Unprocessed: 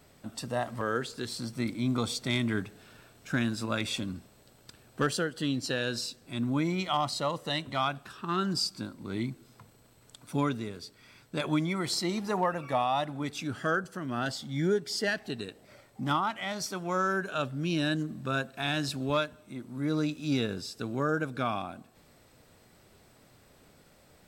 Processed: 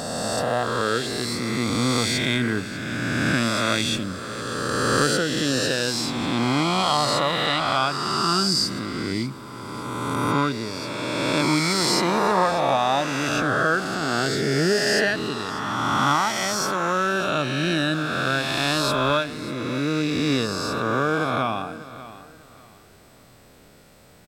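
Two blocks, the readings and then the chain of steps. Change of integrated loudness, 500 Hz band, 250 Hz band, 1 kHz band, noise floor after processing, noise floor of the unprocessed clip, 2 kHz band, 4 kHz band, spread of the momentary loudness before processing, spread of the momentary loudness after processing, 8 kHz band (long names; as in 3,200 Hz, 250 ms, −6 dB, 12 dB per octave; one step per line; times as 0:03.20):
+9.0 dB, +9.0 dB, +7.0 dB, +10.0 dB, −51 dBFS, −60 dBFS, +11.0 dB, +11.0 dB, 10 LU, 8 LU, +12.0 dB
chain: peak hold with a rise ahead of every peak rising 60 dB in 2.80 s
repeating echo 592 ms, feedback 28%, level −16 dB
level +4 dB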